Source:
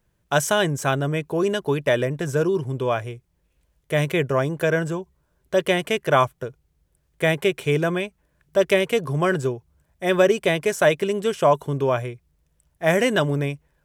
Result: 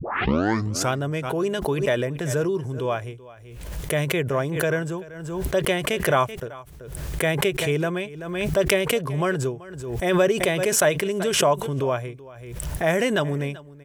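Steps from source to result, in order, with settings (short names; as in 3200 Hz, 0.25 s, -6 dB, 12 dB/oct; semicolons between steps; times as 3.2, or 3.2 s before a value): tape start at the beginning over 0.94 s; echo 0.383 s -19.5 dB; backwards sustainer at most 46 dB/s; gain -3 dB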